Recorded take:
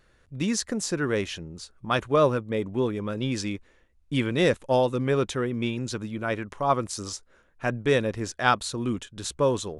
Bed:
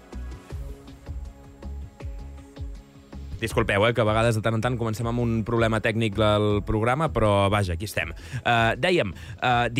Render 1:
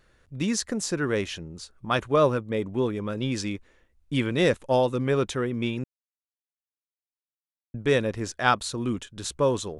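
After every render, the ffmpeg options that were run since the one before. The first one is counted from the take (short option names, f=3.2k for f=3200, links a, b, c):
-filter_complex "[0:a]asplit=3[a][b][c];[a]atrim=end=5.84,asetpts=PTS-STARTPTS,afade=t=out:st=5.836:d=0.004:c=hsin[d];[b]atrim=start=5.84:end=7.74,asetpts=PTS-STARTPTS,volume=0[e];[c]atrim=start=7.74,asetpts=PTS-STARTPTS,afade=t=in:d=0.004:c=hsin[f];[d][e][f]concat=n=3:v=0:a=1"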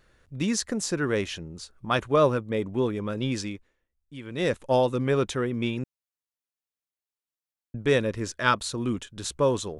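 -filter_complex "[0:a]asettb=1/sr,asplit=3[a][b][c];[a]atrim=end=8.034[d];[b]atrim=start=8.03:end=8.57,asetpts=PTS-STARTPTS,afade=t=in:d=0.004:c=qsin,afade=t=out:st=0.536:d=0.004:c=qsin,asuperstop=centerf=760:order=4:qfactor=4[e];[c]atrim=start=8.566[f];[d][e]acrossfade=d=0.004:c1=hsin:c2=qsin[g];[g][f]acrossfade=d=0.004:c1=qsin:c2=hsin,asplit=3[h][i][j];[h]atrim=end=3.76,asetpts=PTS-STARTPTS,afade=t=out:st=3.32:d=0.44:silence=0.16788[k];[i]atrim=start=3.76:end=4.22,asetpts=PTS-STARTPTS,volume=-15.5dB[l];[j]atrim=start=4.22,asetpts=PTS-STARTPTS,afade=t=in:d=0.44:silence=0.16788[m];[k][l][m]concat=n=3:v=0:a=1"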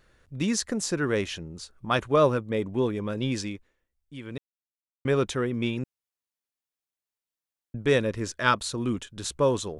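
-filter_complex "[0:a]asettb=1/sr,asplit=3[a][b][c];[a]atrim=end=2.664[d];[b]atrim=start=2.66:end=3.53,asetpts=PTS-STARTPTS,afade=t=in:d=0.004:c=qsin,afade=t=out:st=0.866:d=0.004:c=qsin,bandreject=f=1.3k:w=12[e];[c]atrim=start=3.526[f];[d][e]acrossfade=d=0.004:c1=hsin:c2=qsin[g];[g][f]acrossfade=d=0.004:c1=qsin:c2=hsin,asplit=3[h][i][j];[h]atrim=end=4.38,asetpts=PTS-STARTPTS,afade=t=out:st=4.376:d=0.004:c=hsin[k];[i]atrim=start=4.38:end=5.05,asetpts=PTS-STARTPTS,volume=0[l];[j]atrim=start=5.05,asetpts=PTS-STARTPTS,afade=t=in:d=0.004:c=hsin[m];[k][l][m]concat=n=3:v=0:a=1"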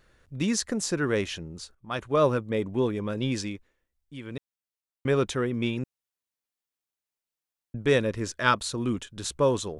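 -filter_complex "[0:a]asplit=2[a][b];[a]atrim=end=1.75,asetpts=PTS-STARTPTS,afade=t=out:st=1.746:d=0.004:c=hsin:silence=0.158489[c];[b]atrim=start=1.75,asetpts=PTS-STARTPTS,afade=t=in:d=0.58:silence=0.158489[d];[c][d]concat=n=2:v=0:a=1"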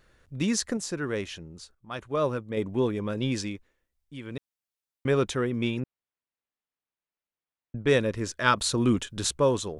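-filter_complex "[0:a]asettb=1/sr,asplit=3[a][b][c];[a]atrim=end=5.804[d];[b]atrim=start=5.8:end=7.87,asetpts=PTS-STARTPTS,afade=t=in:d=0.004:c=qsin,afade=t=out:st=2.066:d=0.004:c=qsin,lowpass=2.8k[e];[c]atrim=start=7.866[f];[d][e]acrossfade=d=0.004:c1=hsin:c2=qsin[g];[g][f]acrossfade=d=0.004:c1=qsin:c2=hsin,asettb=1/sr,asplit=3[h][i][j];[h]atrim=end=8.574[k];[i]atrim=start=8.57:end=9.31,asetpts=PTS-STARTPTS,afade=t=in:d=0.004:c=qsin,afade=t=out:st=0.736:d=0.004:c=qsin,acontrast=28[l];[j]atrim=start=9.306[m];[k][l]acrossfade=d=0.004:c1=hsin:c2=qsin[n];[n][m]acrossfade=d=0.004:c1=qsin:c2=hsin,asplit=3[o][p][q];[o]atrim=end=0.772[r];[p]atrim=start=0.768:end=2.572,asetpts=PTS-STARTPTS,volume=-4.5dB[s];[q]atrim=start=2.568[t];[r][s]acrossfade=d=0.004:c1=hsin:c2=hsin[u];[u][t]acrossfade=d=0.004:c1=hsin:c2=hsin"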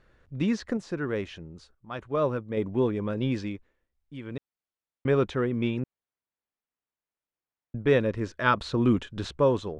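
-filter_complex "[0:a]aemphasis=mode=reproduction:type=75fm,acrossover=split=5000[a][b];[b]acompressor=threshold=-56dB:ratio=4:attack=1:release=60[c];[a][c]amix=inputs=2:normalize=0"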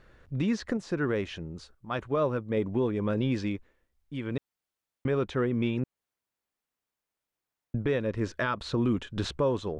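-filter_complex "[0:a]asplit=2[a][b];[b]acompressor=threshold=-31dB:ratio=6,volume=-3dB[c];[a][c]amix=inputs=2:normalize=0,alimiter=limit=-18dB:level=0:latency=1:release=392"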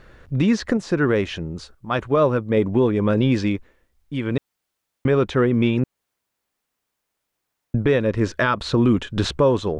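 -af "volume=9.5dB"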